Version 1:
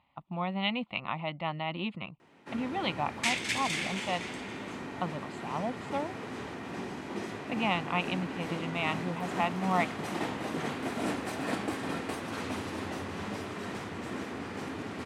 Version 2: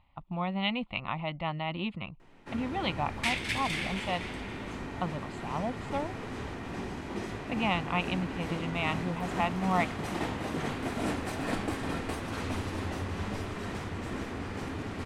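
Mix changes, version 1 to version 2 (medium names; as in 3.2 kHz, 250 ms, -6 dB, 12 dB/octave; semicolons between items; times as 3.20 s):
second sound: add peaking EQ 6.8 kHz -8.5 dB 0.73 oct; master: remove high-pass 150 Hz 12 dB/octave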